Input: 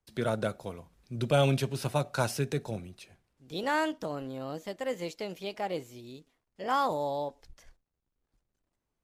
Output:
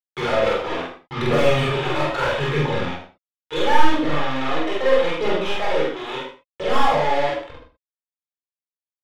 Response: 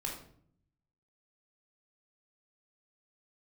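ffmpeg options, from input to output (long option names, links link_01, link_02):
-filter_complex "[0:a]aresample=8000,acrusher=bits=6:mix=0:aa=0.000001,aresample=44100,asplit=2[link_01][link_02];[link_02]highpass=frequency=720:poles=1,volume=30dB,asoftclip=type=tanh:threshold=-13dB[link_03];[link_01][link_03]amix=inputs=2:normalize=0,lowpass=frequency=2600:poles=1,volume=-6dB,aphaser=in_gain=1:out_gain=1:delay=3.2:decay=0.52:speed=0.76:type=triangular,aecho=1:1:46.65|125.4:0.891|0.251[link_04];[1:a]atrim=start_sample=2205,afade=type=out:start_time=0.18:duration=0.01,atrim=end_sample=8379[link_05];[link_04][link_05]afir=irnorm=-1:irlink=0,volume=-4dB"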